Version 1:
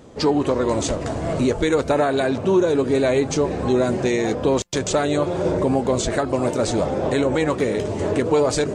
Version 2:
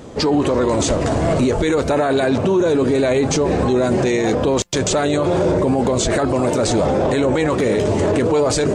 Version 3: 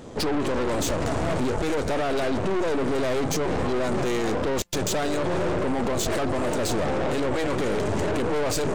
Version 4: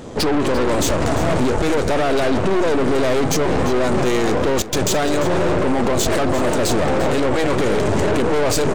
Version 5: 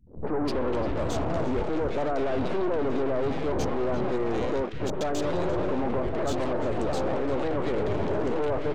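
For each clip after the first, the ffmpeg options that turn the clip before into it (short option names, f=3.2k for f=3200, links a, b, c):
-af "alimiter=limit=-18dB:level=0:latency=1:release=15,volume=8.5dB"
-af "aeval=exprs='(tanh(14.1*val(0)+0.8)-tanh(0.8))/14.1':c=same"
-af "aecho=1:1:346:0.2,volume=7dB"
-filter_complex "[0:a]aemphasis=mode=reproduction:type=75kf,anlmdn=63.1,acrossover=split=170|1800[a][b][c];[b]adelay=70[d];[c]adelay=280[e];[a][d][e]amix=inputs=3:normalize=0,volume=-8.5dB"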